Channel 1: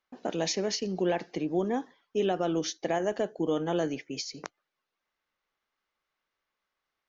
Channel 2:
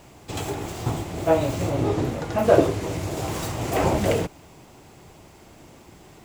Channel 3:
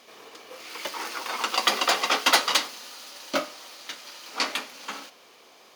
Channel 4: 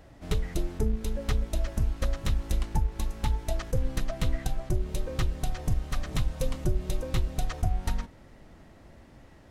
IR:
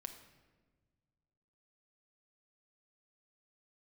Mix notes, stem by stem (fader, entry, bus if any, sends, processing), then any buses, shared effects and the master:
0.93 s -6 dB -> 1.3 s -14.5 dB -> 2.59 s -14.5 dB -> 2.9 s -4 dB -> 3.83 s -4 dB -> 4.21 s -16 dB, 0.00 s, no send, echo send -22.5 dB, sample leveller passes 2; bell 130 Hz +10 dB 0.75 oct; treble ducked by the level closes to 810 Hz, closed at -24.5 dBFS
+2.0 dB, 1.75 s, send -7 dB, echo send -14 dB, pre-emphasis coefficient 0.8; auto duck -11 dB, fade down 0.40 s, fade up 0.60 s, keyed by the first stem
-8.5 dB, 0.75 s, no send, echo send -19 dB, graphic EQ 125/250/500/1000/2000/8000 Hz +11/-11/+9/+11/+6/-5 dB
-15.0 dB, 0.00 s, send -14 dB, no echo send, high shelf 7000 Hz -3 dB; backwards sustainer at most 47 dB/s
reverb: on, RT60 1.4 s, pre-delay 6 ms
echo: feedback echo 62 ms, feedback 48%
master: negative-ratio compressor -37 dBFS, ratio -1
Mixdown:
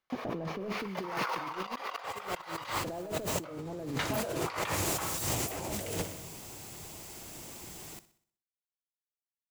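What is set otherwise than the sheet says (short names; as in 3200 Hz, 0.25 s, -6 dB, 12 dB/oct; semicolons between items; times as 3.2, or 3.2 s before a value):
stem 3: entry 0.75 s -> 0.10 s; stem 4: muted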